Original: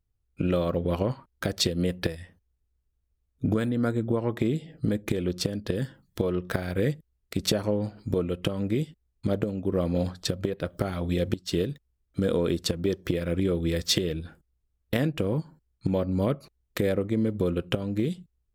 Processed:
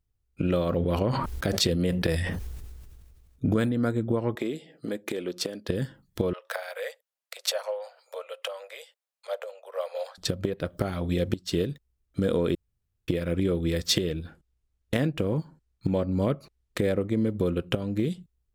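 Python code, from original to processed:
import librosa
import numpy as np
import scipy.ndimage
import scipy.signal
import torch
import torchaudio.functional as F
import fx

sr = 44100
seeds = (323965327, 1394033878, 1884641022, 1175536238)

y = fx.sustainer(x, sr, db_per_s=28.0, at=(0.67, 3.72))
y = fx.highpass(y, sr, hz=340.0, slope=12, at=(4.35, 5.69))
y = fx.steep_highpass(y, sr, hz=510.0, slope=72, at=(6.33, 10.18))
y = fx.resample_linear(y, sr, factor=2, at=(14.1, 16.95))
y = fx.edit(y, sr, fx.room_tone_fill(start_s=12.55, length_s=0.53), tone=tone)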